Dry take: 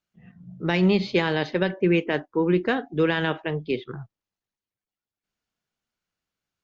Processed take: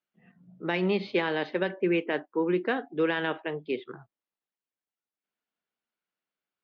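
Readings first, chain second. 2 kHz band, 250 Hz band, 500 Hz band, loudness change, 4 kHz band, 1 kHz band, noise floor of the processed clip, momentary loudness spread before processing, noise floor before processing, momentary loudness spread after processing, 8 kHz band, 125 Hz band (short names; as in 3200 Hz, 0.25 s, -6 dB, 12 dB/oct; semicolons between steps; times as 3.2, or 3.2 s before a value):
-4.0 dB, -6.0 dB, -4.0 dB, -5.0 dB, -6.0 dB, -3.5 dB, under -85 dBFS, 10 LU, under -85 dBFS, 8 LU, n/a, -11.0 dB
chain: three-band isolator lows -21 dB, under 200 Hz, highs -19 dB, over 4100 Hz; gain -3.5 dB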